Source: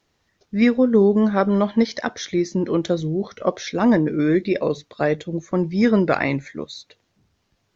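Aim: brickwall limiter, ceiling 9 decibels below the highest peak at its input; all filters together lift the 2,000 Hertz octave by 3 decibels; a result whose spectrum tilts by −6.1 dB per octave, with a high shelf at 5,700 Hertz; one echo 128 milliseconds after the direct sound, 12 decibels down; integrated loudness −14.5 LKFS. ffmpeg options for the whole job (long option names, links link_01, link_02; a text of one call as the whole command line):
ffmpeg -i in.wav -af "equalizer=frequency=2000:width_type=o:gain=4.5,highshelf=frequency=5700:gain=-7.5,alimiter=limit=-12dB:level=0:latency=1,aecho=1:1:128:0.251,volume=8dB" out.wav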